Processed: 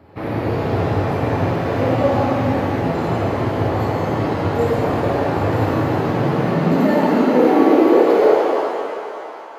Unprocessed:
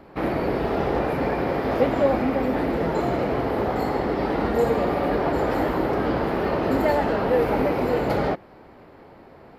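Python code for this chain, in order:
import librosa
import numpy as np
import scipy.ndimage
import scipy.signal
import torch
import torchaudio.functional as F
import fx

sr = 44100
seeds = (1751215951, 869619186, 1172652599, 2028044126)

y = fx.filter_sweep_highpass(x, sr, from_hz=100.0, to_hz=930.0, start_s=5.59, end_s=9.54, q=6.5)
y = fx.rev_shimmer(y, sr, seeds[0], rt60_s=2.4, semitones=7, shimmer_db=-8, drr_db=-4.5)
y = y * 10.0 ** (-4.0 / 20.0)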